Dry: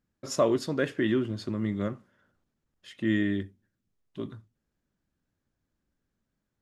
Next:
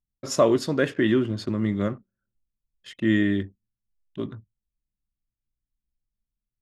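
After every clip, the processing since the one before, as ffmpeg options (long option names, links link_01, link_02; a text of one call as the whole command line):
ffmpeg -i in.wav -af "anlmdn=0.00158,volume=5dB" out.wav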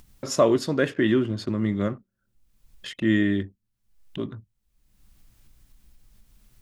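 ffmpeg -i in.wav -af "acompressor=mode=upward:threshold=-30dB:ratio=2.5" out.wav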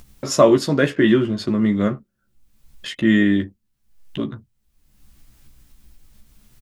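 ffmpeg -i in.wav -filter_complex "[0:a]asplit=2[link_01][link_02];[link_02]adelay=14,volume=-6dB[link_03];[link_01][link_03]amix=inputs=2:normalize=0,volume=5dB" out.wav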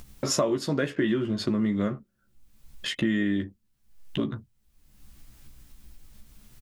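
ffmpeg -i in.wav -af "acompressor=threshold=-23dB:ratio=5" out.wav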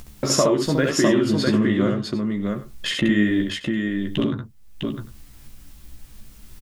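ffmpeg -i in.wav -af "aecho=1:1:67|654|749:0.668|0.631|0.119,volume=5dB" out.wav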